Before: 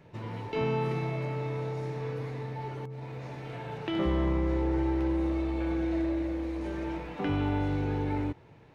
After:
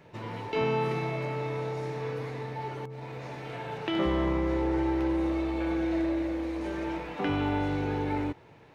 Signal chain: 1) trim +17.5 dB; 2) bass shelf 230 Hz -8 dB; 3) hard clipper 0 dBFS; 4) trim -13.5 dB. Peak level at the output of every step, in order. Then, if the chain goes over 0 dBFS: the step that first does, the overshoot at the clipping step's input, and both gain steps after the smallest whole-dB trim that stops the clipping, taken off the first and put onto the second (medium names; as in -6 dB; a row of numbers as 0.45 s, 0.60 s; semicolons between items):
-0.5 dBFS, -3.5 dBFS, -3.5 dBFS, -17.0 dBFS; nothing clips